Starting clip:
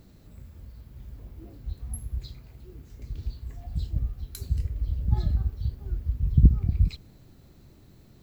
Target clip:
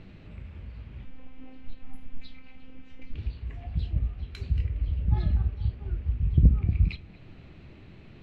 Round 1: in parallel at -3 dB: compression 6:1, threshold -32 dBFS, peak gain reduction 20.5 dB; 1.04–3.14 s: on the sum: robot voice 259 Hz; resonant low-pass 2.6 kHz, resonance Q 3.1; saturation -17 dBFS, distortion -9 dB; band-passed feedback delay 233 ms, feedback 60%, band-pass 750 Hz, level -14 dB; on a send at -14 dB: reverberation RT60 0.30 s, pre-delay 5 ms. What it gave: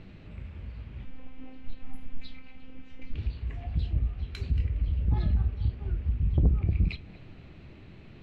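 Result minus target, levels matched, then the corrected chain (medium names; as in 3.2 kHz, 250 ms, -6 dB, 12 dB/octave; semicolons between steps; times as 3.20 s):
compression: peak gain reduction -9 dB; saturation: distortion +9 dB
in parallel at -3 dB: compression 6:1, threshold -43 dBFS, peak gain reduction 29.5 dB; 1.04–3.14 s: on the sum: robot voice 259 Hz; resonant low-pass 2.6 kHz, resonance Q 3.1; saturation -8.5 dBFS, distortion -18 dB; band-passed feedback delay 233 ms, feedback 60%, band-pass 750 Hz, level -14 dB; on a send at -14 dB: reverberation RT60 0.30 s, pre-delay 5 ms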